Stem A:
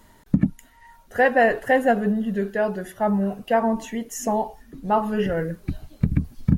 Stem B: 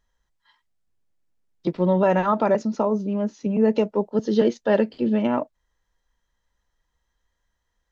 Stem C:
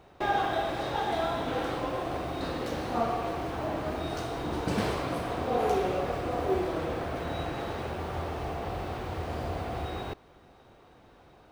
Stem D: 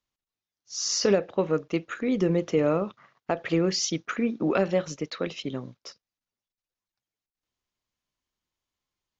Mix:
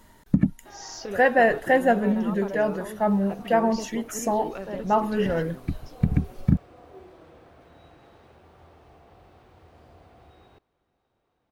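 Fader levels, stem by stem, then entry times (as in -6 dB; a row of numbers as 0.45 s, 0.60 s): -1.0 dB, -16.5 dB, -19.0 dB, -13.0 dB; 0.00 s, 0.00 s, 0.45 s, 0.00 s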